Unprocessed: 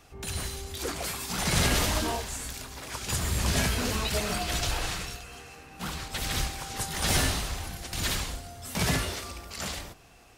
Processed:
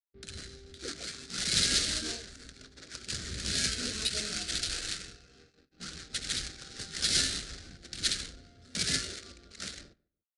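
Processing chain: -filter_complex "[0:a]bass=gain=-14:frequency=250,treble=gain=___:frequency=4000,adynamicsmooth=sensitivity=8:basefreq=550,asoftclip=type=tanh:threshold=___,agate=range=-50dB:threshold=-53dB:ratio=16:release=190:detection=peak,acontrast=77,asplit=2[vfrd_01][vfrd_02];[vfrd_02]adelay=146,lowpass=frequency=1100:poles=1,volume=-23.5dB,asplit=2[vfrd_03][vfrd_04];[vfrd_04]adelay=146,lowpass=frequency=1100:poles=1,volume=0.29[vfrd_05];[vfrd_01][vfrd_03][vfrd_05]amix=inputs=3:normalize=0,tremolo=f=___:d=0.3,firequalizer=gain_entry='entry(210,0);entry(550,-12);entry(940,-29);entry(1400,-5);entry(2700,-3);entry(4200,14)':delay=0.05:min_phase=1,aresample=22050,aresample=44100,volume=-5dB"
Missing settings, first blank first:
-8, -21dB, 5.7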